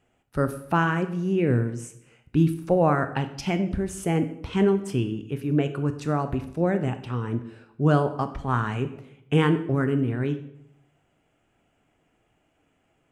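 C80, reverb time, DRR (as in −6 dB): 15.0 dB, 0.75 s, 9.0 dB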